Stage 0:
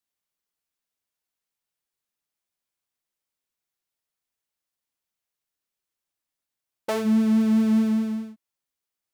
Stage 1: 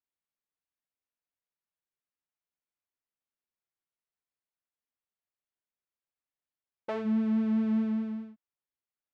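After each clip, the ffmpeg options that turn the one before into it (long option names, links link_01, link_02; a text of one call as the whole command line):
ffmpeg -i in.wav -af "lowpass=2600,volume=-7.5dB" out.wav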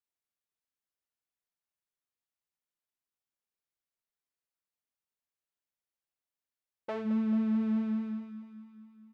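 ffmpeg -i in.wav -af "aecho=1:1:219|438|657|876|1095|1314|1533:0.282|0.169|0.101|0.0609|0.0365|0.0219|0.0131,volume=-2.5dB" out.wav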